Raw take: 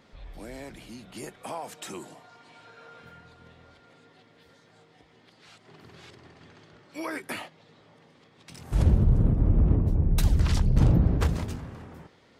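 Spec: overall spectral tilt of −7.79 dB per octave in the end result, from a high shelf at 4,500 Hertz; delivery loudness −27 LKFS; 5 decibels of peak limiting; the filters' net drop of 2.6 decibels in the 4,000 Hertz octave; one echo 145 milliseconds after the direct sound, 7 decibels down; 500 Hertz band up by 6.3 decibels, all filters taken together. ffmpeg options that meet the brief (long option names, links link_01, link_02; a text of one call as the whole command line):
ffmpeg -i in.wav -af "equalizer=frequency=500:width_type=o:gain=8,equalizer=frequency=4000:width_type=o:gain=-5.5,highshelf=frequency=4500:gain=3.5,alimiter=limit=-14dB:level=0:latency=1,aecho=1:1:145:0.447,volume=-0.5dB" out.wav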